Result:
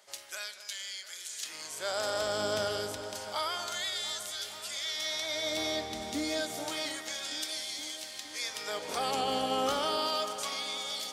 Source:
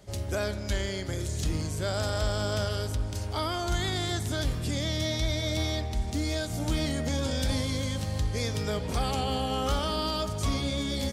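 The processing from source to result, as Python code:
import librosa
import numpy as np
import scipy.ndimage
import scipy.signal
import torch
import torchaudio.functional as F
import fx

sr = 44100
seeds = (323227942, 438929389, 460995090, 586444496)

y = fx.filter_lfo_highpass(x, sr, shape='sine', hz=0.29, low_hz=280.0, high_hz=2900.0, q=0.76)
y = fx.echo_alternate(y, sr, ms=233, hz=1800.0, feedback_pct=85, wet_db=-12.0)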